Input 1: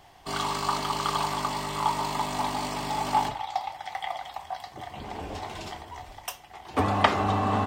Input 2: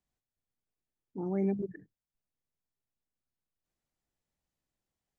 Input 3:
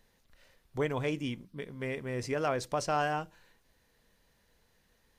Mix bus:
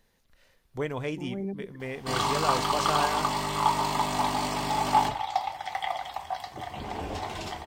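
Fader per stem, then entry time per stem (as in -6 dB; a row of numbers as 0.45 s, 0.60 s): +2.0 dB, -4.0 dB, 0.0 dB; 1.80 s, 0.00 s, 0.00 s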